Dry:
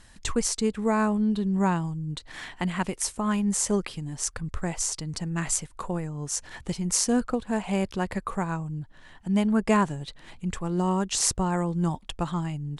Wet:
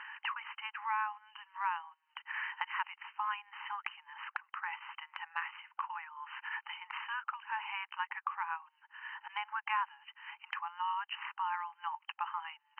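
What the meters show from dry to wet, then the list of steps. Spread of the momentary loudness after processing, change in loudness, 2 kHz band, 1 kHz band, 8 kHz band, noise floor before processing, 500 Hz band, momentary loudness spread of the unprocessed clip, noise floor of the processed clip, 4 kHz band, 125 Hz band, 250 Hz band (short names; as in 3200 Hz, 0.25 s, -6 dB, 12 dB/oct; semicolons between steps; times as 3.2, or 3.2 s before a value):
10 LU, -12.0 dB, -1.5 dB, -4.0 dB, under -40 dB, -51 dBFS, under -40 dB, 11 LU, -77 dBFS, -10.5 dB, under -40 dB, under -40 dB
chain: brick-wall FIR band-pass 810–3100 Hz; three-band squash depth 70%; gain -2 dB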